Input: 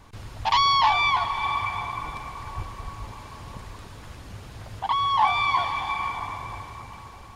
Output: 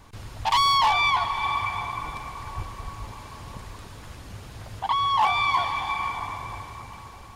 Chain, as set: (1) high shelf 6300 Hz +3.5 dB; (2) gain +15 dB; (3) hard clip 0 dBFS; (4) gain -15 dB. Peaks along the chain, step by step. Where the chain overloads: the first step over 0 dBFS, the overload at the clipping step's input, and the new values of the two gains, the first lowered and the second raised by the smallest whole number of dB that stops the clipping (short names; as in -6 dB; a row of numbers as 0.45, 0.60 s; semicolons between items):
-8.0, +7.0, 0.0, -15.0 dBFS; step 2, 7.0 dB; step 2 +8 dB, step 4 -8 dB